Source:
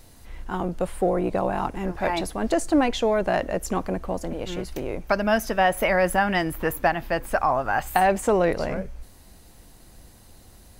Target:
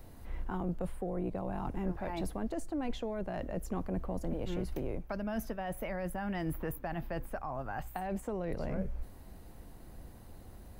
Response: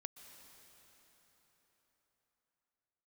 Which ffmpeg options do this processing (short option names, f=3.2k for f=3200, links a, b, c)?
-filter_complex "[0:a]areverse,acompressor=threshold=-27dB:ratio=6,areverse,equalizer=f=6.5k:w=0.36:g=-13.5,acrossover=split=230|3000[a][b][c];[b]acompressor=threshold=-37dB:ratio=6[d];[a][d][c]amix=inputs=3:normalize=0"